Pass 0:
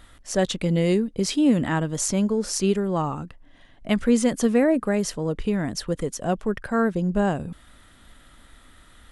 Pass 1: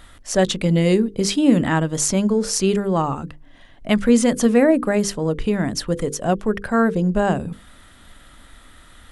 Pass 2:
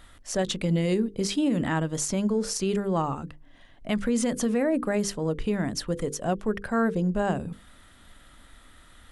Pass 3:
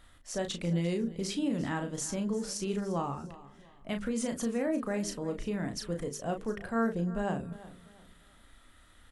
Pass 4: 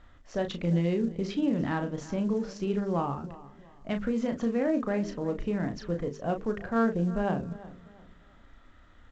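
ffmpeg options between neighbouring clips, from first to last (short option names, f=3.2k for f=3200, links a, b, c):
-af "bandreject=f=50:t=h:w=6,bandreject=f=100:t=h:w=6,bandreject=f=150:t=h:w=6,bandreject=f=200:t=h:w=6,bandreject=f=250:t=h:w=6,bandreject=f=300:t=h:w=6,bandreject=f=350:t=h:w=6,bandreject=f=400:t=h:w=6,bandreject=f=450:t=h:w=6,bandreject=f=500:t=h:w=6,volume=5dB"
-af "alimiter=limit=-10.5dB:level=0:latency=1:release=50,volume=-6dB"
-filter_complex "[0:a]asplit=2[a][b];[b]adelay=35,volume=-6.5dB[c];[a][c]amix=inputs=2:normalize=0,aecho=1:1:347|694|1041:0.133|0.0427|0.0137,volume=-7.5dB"
-af "adynamicsmooth=sensitivity=2:basefreq=2.4k,volume=4dB" -ar 16000 -c:a pcm_mulaw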